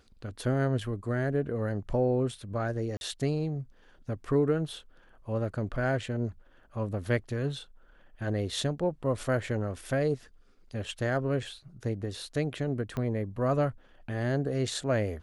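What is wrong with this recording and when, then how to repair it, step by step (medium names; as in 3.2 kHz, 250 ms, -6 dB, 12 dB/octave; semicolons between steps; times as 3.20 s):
2.97–3.01 s: dropout 41 ms
12.97 s: pop -21 dBFS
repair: de-click; interpolate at 2.97 s, 41 ms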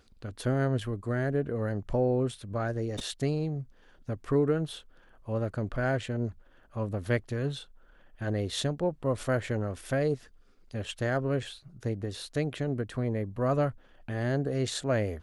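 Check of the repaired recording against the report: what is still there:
12.97 s: pop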